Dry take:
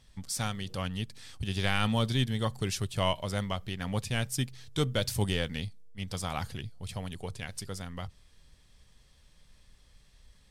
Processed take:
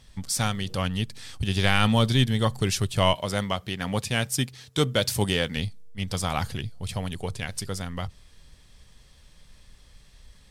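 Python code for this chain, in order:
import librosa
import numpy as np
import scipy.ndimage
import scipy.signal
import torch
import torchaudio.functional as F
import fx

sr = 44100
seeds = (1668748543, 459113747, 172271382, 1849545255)

y = fx.highpass(x, sr, hz=150.0, slope=6, at=(3.14, 5.57))
y = y * 10.0 ** (7.0 / 20.0)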